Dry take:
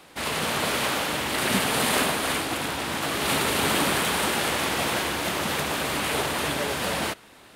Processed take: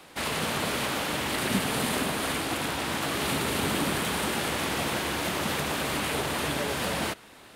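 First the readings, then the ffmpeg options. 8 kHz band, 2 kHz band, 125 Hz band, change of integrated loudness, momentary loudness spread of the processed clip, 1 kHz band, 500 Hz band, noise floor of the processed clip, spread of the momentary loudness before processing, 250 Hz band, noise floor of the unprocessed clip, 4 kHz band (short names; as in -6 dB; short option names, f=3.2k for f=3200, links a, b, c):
-4.0 dB, -4.0 dB, 0.0 dB, -3.5 dB, 2 LU, -4.0 dB, -3.0 dB, -51 dBFS, 5 LU, -1.0 dB, -51 dBFS, -4.0 dB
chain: -filter_complex "[0:a]acrossover=split=340[a][b];[b]acompressor=threshold=-27dB:ratio=6[c];[a][c]amix=inputs=2:normalize=0"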